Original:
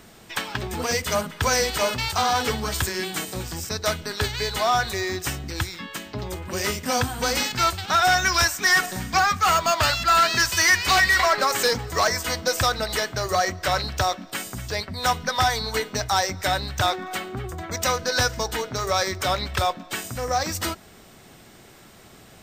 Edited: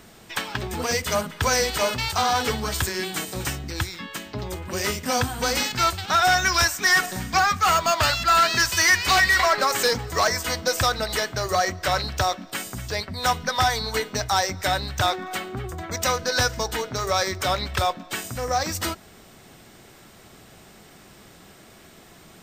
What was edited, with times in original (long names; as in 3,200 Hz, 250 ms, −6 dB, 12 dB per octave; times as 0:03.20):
0:03.45–0:05.25: remove